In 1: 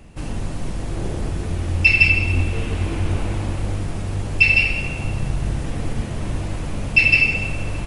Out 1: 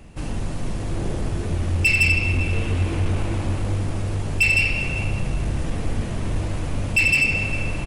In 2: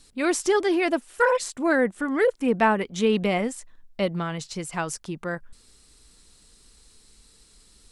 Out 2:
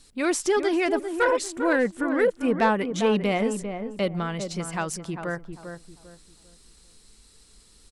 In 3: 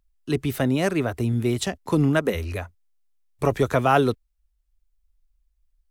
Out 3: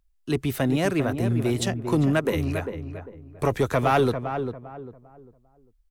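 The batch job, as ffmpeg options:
-filter_complex "[0:a]asoftclip=type=tanh:threshold=-12.5dB,asplit=2[link_01][link_02];[link_02]adelay=398,lowpass=frequency=1200:poles=1,volume=-7dB,asplit=2[link_03][link_04];[link_04]adelay=398,lowpass=frequency=1200:poles=1,volume=0.32,asplit=2[link_05][link_06];[link_06]adelay=398,lowpass=frequency=1200:poles=1,volume=0.32,asplit=2[link_07][link_08];[link_08]adelay=398,lowpass=frequency=1200:poles=1,volume=0.32[link_09];[link_03][link_05][link_07][link_09]amix=inputs=4:normalize=0[link_10];[link_01][link_10]amix=inputs=2:normalize=0"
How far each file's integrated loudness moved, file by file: −2.5, −0.5, −1.5 LU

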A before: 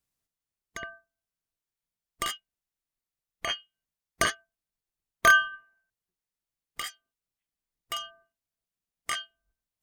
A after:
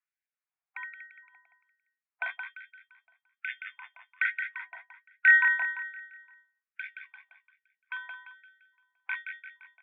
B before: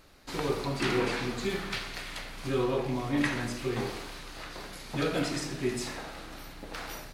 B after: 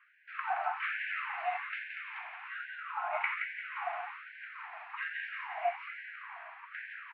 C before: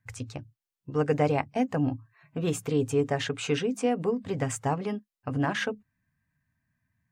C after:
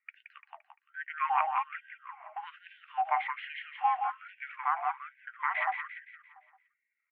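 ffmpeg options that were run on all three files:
-af "aecho=1:1:172|344|516|688|860|1032:0.501|0.231|0.106|0.0488|0.0224|0.0103,highpass=frequency=160:width_type=q:width=0.5412,highpass=frequency=160:width_type=q:width=1.307,lowpass=frequency=2100:width_type=q:width=0.5176,lowpass=frequency=2100:width_type=q:width=0.7071,lowpass=frequency=2100:width_type=q:width=1.932,afreqshift=330,afftfilt=real='re*gte(b*sr/1024,630*pow(1500/630,0.5+0.5*sin(2*PI*1.2*pts/sr)))':imag='im*gte(b*sr/1024,630*pow(1500/630,0.5+0.5*sin(2*PI*1.2*pts/sr)))':win_size=1024:overlap=0.75"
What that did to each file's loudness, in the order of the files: +0.5, −5.0, −4.5 LU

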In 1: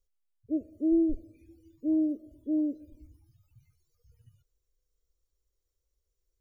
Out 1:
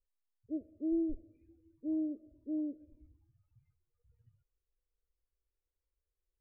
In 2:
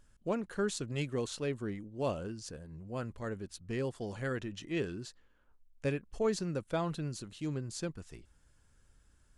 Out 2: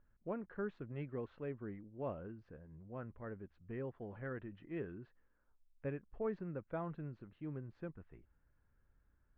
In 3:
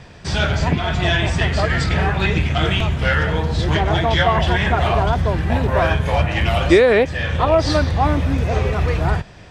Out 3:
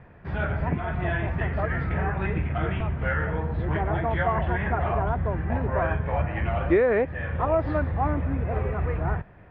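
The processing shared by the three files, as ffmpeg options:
-af "lowpass=frequency=2000:width=0.5412,lowpass=frequency=2000:width=1.3066,volume=-8dB"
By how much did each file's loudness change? −8.0, −8.5, −8.5 LU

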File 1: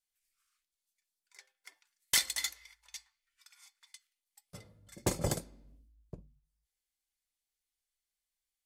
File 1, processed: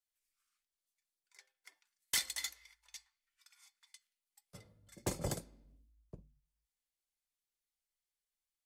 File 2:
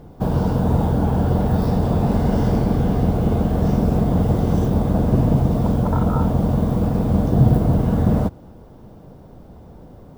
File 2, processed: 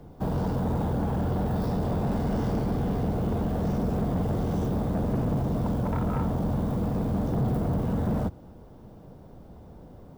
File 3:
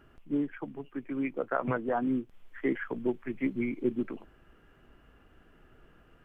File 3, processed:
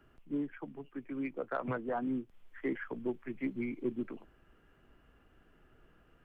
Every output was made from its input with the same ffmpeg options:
-filter_complex "[0:a]acrossover=split=140|600[link_01][link_02][link_03];[link_01]alimiter=limit=-18.5dB:level=0:latency=1[link_04];[link_04][link_02][link_03]amix=inputs=3:normalize=0,asoftclip=type=tanh:threshold=-16dB,volume=-5dB"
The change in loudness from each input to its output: −5.5, −9.0, −5.5 LU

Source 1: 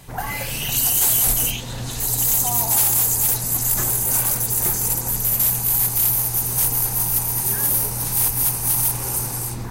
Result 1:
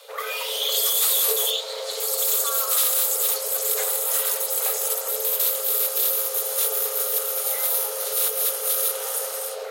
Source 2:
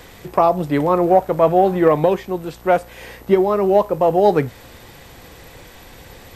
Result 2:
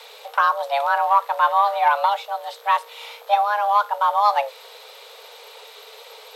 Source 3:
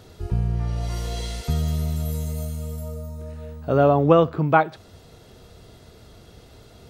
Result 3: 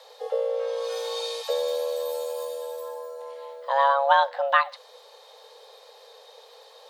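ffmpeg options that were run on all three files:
-af "equalizer=frequency=3300:width_type=o:width=0.73:gain=11,afreqshift=410,volume=-4dB"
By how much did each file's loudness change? −3.5, −3.0, −3.0 LU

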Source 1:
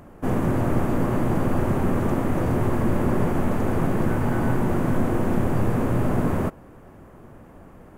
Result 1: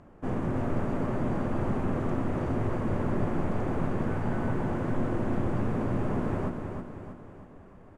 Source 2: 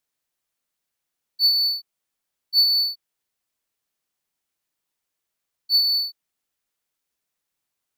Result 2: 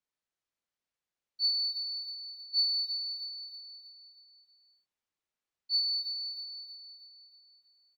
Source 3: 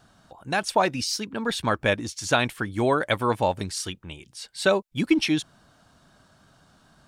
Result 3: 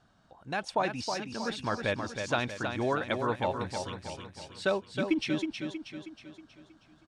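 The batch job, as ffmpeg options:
-af "lowpass=7800,aemphasis=mode=reproduction:type=50fm,crystalizer=i=1:c=0,aecho=1:1:318|636|954|1272|1590|1908:0.501|0.246|0.12|0.059|0.0289|0.0142,volume=-8dB"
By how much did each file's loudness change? −7.0, −12.0, −7.5 LU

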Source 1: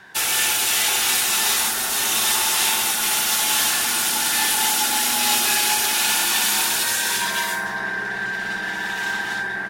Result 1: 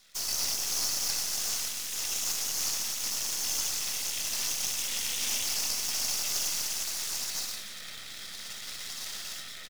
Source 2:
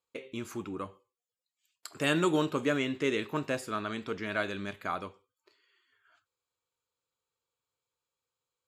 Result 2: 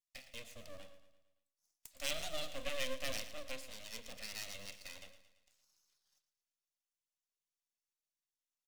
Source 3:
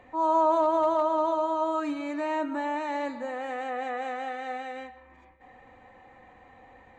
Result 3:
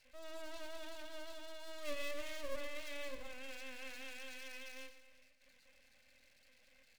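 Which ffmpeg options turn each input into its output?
-filter_complex "[0:a]asplit=3[link_01][link_02][link_03];[link_01]bandpass=frequency=270:width_type=q:width=8,volume=0dB[link_04];[link_02]bandpass=frequency=2290:width_type=q:width=8,volume=-6dB[link_05];[link_03]bandpass=frequency=3010:width_type=q:width=8,volume=-9dB[link_06];[link_04][link_05][link_06]amix=inputs=3:normalize=0,equalizer=frequency=1200:width_type=o:width=2.7:gain=-7,bandreject=frequency=70.2:width_type=h:width=4,bandreject=frequency=140.4:width_type=h:width=4,bandreject=frequency=210.6:width_type=h:width=4,bandreject=frequency=280.8:width_type=h:width=4,bandreject=frequency=351:width_type=h:width=4,bandreject=frequency=421.2:width_type=h:width=4,bandreject=frequency=491.4:width_type=h:width=4,bandreject=frequency=561.6:width_type=h:width=4,bandreject=frequency=631.8:width_type=h:width=4,bandreject=frequency=702:width_type=h:width=4,bandreject=frequency=772.2:width_type=h:width=4,bandreject=frequency=842.4:width_type=h:width=4,bandreject=frequency=912.6:width_type=h:width=4,bandreject=frequency=982.8:width_type=h:width=4,bandreject=frequency=1053:width_type=h:width=4,bandreject=frequency=1123.2:width_type=h:width=4,bandreject=frequency=1193.4:width_type=h:width=4,bandreject=frequency=1263.6:width_type=h:width=4,bandreject=frequency=1333.8:width_type=h:width=4,acrossover=split=3800[link_07][link_08];[link_08]acompressor=threshold=-55dB:ratio=4:attack=1:release=60[link_09];[link_07][link_09]amix=inputs=2:normalize=0,acrossover=split=190[link_10][link_11];[link_10]flanger=delay=18.5:depth=5.5:speed=2.2[link_12];[link_11]aeval=exprs='abs(val(0))':channel_layout=same[link_13];[link_12][link_13]amix=inputs=2:normalize=0,crystalizer=i=8.5:c=0,asplit=2[link_14][link_15];[link_15]aecho=0:1:113|226|339|452|565:0.211|0.11|0.0571|0.0297|0.0155[link_16];[link_14][link_16]amix=inputs=2:normalize=0"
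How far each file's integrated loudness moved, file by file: −11.0, −11.0, −19.5 LU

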